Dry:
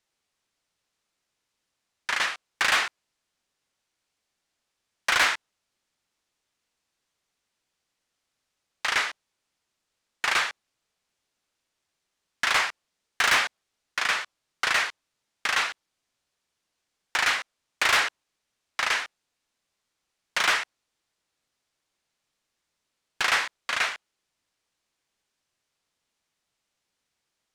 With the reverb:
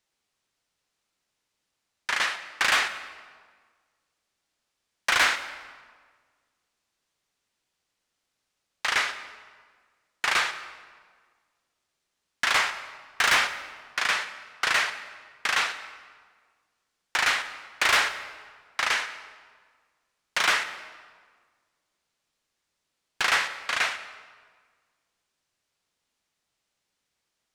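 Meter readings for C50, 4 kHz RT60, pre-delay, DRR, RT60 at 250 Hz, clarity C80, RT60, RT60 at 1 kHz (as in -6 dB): 11.5 dB, 1.2 s, 27 ms, 10.5 dB, 1.8 s, 12.5 dB, 1.6 s, 1.6 s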